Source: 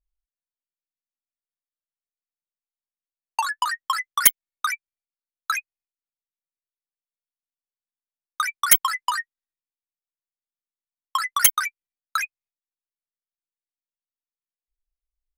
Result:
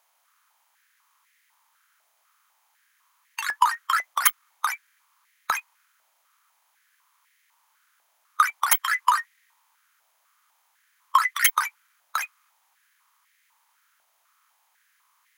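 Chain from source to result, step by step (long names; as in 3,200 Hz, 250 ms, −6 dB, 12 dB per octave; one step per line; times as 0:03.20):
compressor on every frequency bin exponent 0.6
high-pass on a step sequencer 4 Hz 680–1,900 Hz
level −7 dB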